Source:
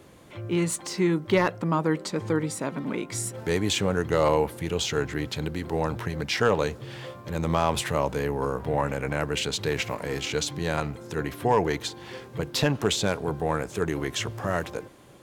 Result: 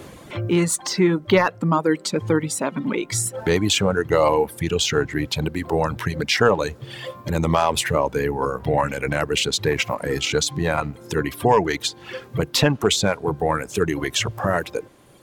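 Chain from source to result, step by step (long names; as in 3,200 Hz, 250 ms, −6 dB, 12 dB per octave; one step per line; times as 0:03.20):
reverb reduction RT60 1.8 s
in parallel at +2.5 dB: downward compressor, threshold −36 dBFS, peak gain reduction 17 dB
on the sum: level +4.5 dB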